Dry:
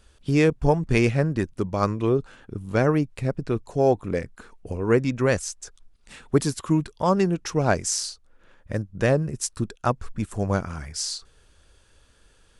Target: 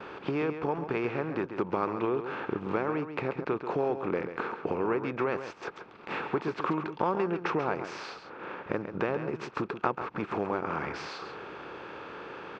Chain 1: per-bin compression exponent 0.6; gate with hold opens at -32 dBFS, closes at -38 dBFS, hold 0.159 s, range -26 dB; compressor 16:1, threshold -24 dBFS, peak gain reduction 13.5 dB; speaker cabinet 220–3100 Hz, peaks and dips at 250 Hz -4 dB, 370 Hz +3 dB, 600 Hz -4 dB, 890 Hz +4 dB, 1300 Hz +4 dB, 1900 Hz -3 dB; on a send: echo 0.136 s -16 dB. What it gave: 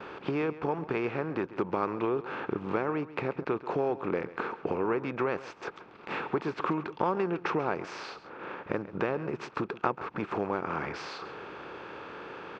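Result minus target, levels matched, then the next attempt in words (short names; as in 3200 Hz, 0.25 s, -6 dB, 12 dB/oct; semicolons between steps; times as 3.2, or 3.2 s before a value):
echo-to-direct -6.5 dB
per-bin compression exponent 0.6; gate with hold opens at -32 dBFS, closes at -38 dBFS, hold 0.159 s, range -26 dB; compressor 16:1, threshold -24 dBFS, peak gain reduction 13.5 dB; speaker cabinet 220–3100 Hz, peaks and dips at 250 Hz -4 dB, 370 Hz +3 dB, 600 Hz -4 dB, 890 Hz +4 dB, 1300 Hz +4 dB, 1900 Hz -3 dB; on a send: echo 0.136 s -9.5 dB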